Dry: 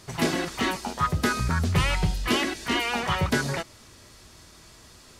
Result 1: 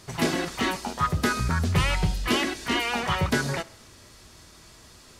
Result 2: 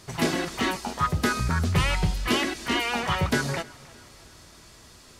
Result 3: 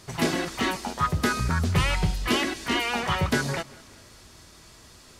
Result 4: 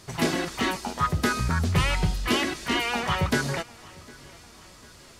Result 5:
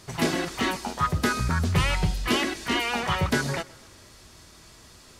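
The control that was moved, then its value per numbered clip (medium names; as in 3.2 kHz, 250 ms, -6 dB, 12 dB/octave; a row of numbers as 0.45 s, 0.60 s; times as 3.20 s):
tape echo, time: 68 ms, 309 ms, 194 ms, 752 ms, 125 ms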